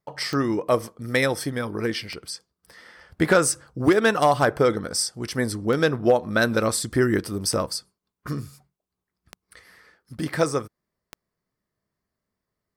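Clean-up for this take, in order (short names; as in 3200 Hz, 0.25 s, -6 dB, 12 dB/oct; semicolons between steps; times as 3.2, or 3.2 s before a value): clip repair -8.5 dBFS; de-click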